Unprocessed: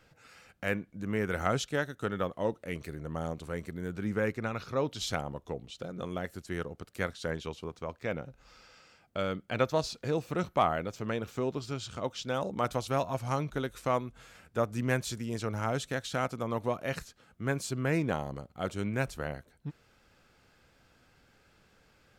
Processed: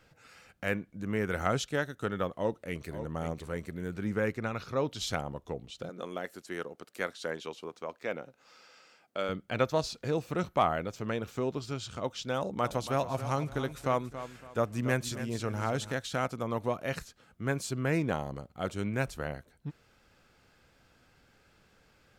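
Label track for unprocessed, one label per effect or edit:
2.360000	2.930000	echo throw 540 ms, feedback 25%, level -10.5 dB
5.890000	9.290000	high-pass 270 Hz
12.370000	15.920000	feedback delay 279 ms, feedback 31%, level -12 dB

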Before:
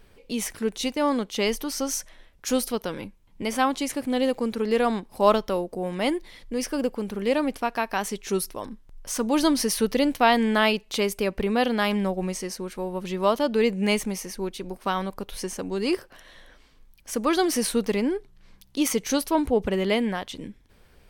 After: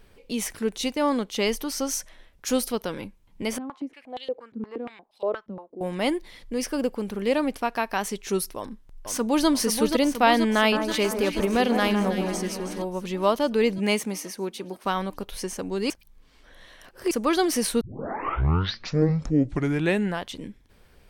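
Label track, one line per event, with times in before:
3.580000	5.810000	step-sequenced band-pass 8.5 Hz 210–3500 Hz
8.570000	9.480000	echo throw 480 ms, feedback 75%, level -6 dB
10.560000	12.820000	echo whose repeats swap between lows and highs 160 ms, split 1.6 kHz, feedback 69%, level -6.5 dB
13.780000	14.850000	high-pass 160 Hz
15.900000	17.110000	reverse
17.810000	17.810000	tape start 2.49 s

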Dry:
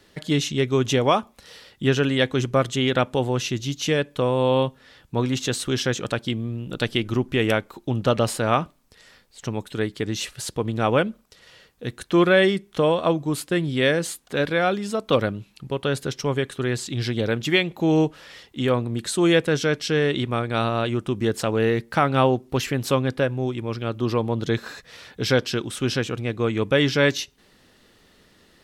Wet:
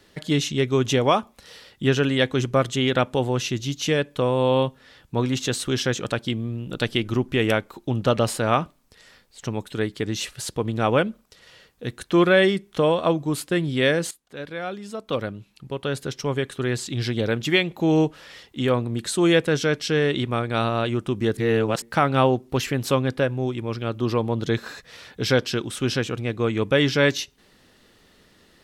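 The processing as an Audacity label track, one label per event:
14.110000	16.740000	fade in, from -16 dB
21.370000	21.820000	reverse

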